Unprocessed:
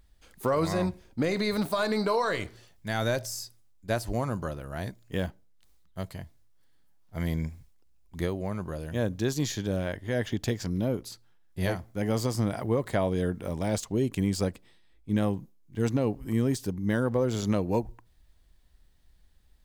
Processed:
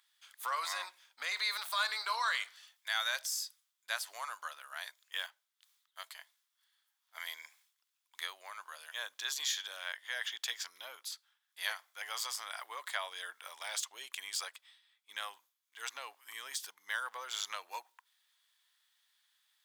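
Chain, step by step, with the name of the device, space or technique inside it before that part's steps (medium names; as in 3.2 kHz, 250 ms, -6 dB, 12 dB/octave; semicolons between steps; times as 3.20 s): headphones lying on a table (high-pass 1.1 kHz 24 dB/octave; peaking EQ 3.4 kHz +7.5 dB 0.21 oct)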